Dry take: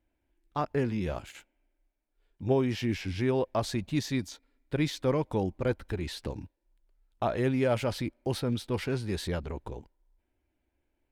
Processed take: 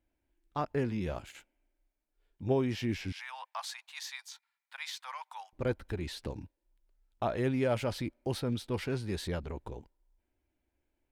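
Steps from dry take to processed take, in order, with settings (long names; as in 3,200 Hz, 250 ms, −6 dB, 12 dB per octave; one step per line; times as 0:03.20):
0:03.12–0:05.53: Butterworth high-pass 820 Hz 48 dB per octave
level −3 dB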